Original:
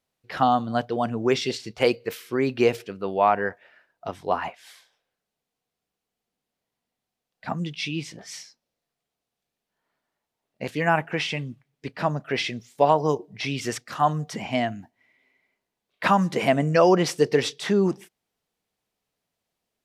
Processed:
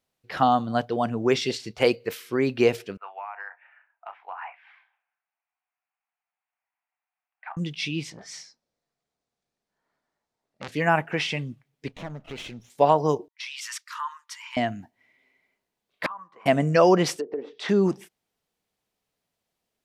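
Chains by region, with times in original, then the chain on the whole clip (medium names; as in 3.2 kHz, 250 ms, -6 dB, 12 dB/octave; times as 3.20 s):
2.97–7.57 s: Chebyshev band-pass 790–2500 Hz, order 3 + compression 10:1, threshold -32 dBFS + doubling 30 ms -12.5 dB
8.10–10.72 s: low-pass 7.8 kHz + peaking EQ 2.9 kHz -6 dB 0.62 oct + transformer saturation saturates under 2.4 kHz
11.88–12.70 s: comb filter that takes the minimum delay 0.32 ms + treble shelf 7.2 kHz -8 dB + compression 2:1, threshold -41 dBFS
13.28–14.57 s: brick-wall FIR high-pass 880 Hz + compression 4:1, threshold -31 dBFS + three bands expanded up and down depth 70%
16.06–16.46 s: band-pass filter 1.1 kHz, Q 13 + compression 5:1, threshold -33 dBFS
17.16–17.69 s: low-pass that closes with the level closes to 570 Hz, closed at -18 dBFS + high-pass 270 Hz 24 dB/octave + compression 4:1, threshold -27 dBFS
whole clip: none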